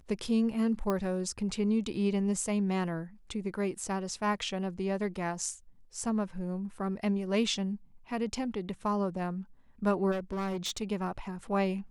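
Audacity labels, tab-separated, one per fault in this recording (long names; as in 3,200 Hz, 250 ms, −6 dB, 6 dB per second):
0.900000	0.900000	click −18 dBFS
10.110000	10.830000	clipping −30 dBFS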